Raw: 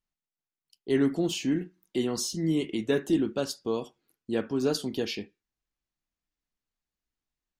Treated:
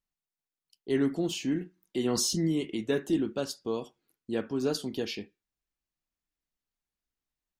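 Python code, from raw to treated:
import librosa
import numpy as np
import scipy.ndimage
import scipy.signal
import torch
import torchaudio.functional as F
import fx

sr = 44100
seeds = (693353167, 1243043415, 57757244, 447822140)

y = fx.env_flatten(x, sr, amount_pct=50, at=(2.04, 2.47), fade=0.02)
y = y * 10.0 ** (-2.5 / 20.0)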